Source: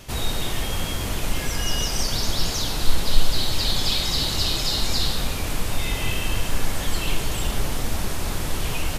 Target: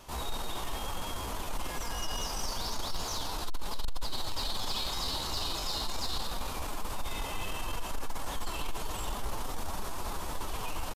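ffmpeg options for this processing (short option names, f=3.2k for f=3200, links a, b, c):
-af "equalizer=f=125:t=o:w=1:g=-7,equalizer=f=1k:t=o:w=1:g=10,equalizer=f=2k:t=o:w=1:g=-4,atempo=0.82,asoftclip=type=tanh:threshold=-15.5dB,volume=-9dB"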